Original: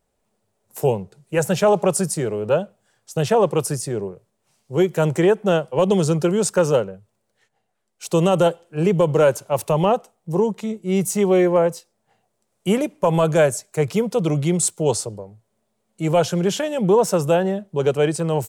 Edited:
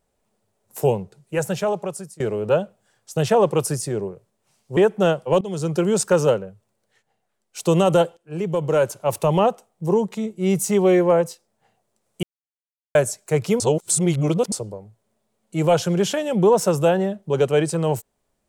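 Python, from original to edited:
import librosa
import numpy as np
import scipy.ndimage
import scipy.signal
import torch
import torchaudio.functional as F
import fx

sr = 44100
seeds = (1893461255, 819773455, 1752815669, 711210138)

y = fx.edit(x, sr, fx.fade_out_to(start_s=1.0, length_s=1.2, floor_db=-23.5),
    fx.cut(start_s=4.77, length_s=0.46),
    fx.fade_in_from(start_s=5.87, length_s=0.47, floor_db=-19.5),
    fx.fade_in_from(start_s=8.63, length_s=1.01, floor_db=-13.0),
    fx.silence(start_s=12.69, length_s=0.72),
    fx.reverse_span(start_s=14.06, length_s=0.92), tone=tone)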